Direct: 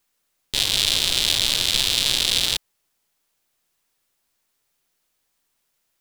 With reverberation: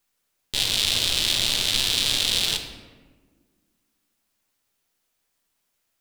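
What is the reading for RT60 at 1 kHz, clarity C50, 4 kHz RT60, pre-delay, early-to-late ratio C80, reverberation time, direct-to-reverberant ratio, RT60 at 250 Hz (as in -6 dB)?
1.3 s, 7.0 dB, 0.80 s, 5 ms, 8.5 dB, 1.5 s, 4.0 dB, 2.3 s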